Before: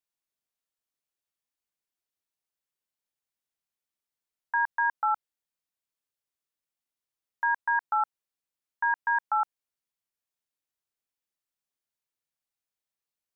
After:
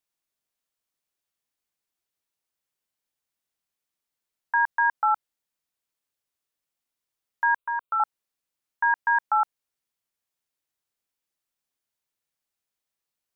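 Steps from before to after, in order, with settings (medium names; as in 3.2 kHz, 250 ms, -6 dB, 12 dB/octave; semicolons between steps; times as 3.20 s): 7.56–8.00 s: static phaser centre 1.2 kHz, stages 8; trim +4 dB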